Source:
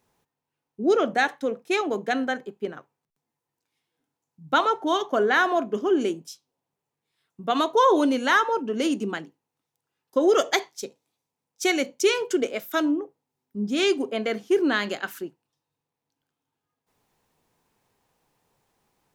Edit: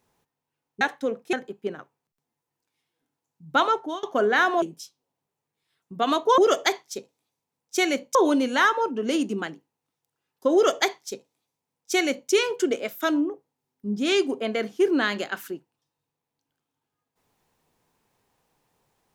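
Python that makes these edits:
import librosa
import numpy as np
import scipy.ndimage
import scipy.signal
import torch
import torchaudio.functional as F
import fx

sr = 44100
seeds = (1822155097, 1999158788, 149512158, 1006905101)

y = fx.edit(x, sr, fx.cut(start_s=0.81, length_s=0.4),
    fx.cut(start_s=1.73, length_s=0.58),
    fx.fade_out_to(start_s=4.72, length_s=0.29, floor_db=-23.0),
    fx.cut(start_s=5.6, length_s=0.5),
    fx.duplicate(start_s=10.25, length_s=1.77, to_s=7.86), tone=tone)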